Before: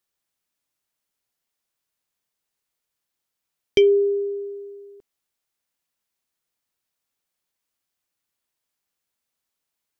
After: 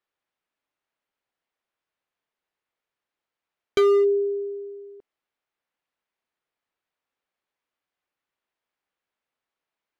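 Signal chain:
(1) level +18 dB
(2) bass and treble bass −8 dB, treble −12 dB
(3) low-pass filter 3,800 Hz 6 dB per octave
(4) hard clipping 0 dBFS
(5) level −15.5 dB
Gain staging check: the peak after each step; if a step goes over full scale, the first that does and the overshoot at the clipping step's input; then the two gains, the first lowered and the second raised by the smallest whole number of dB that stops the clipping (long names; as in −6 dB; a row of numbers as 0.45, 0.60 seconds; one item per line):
+9.0, +9.5, +9.0, 0.0, −15.5 dBFS
step 1, 9.0 dB
step 1 +9 dB, step 5 −6.5 dB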